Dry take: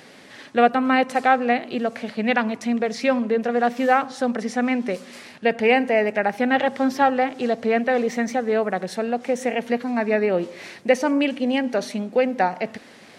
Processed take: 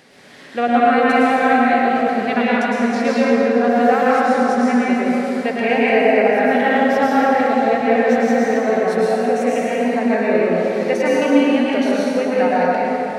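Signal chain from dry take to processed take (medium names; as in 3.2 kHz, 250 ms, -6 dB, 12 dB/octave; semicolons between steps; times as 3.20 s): plate-style reverb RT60 3.8 s, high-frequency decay 0.5×, pre-delay 95 ms, DRR -8 dB; trim -3.5 dB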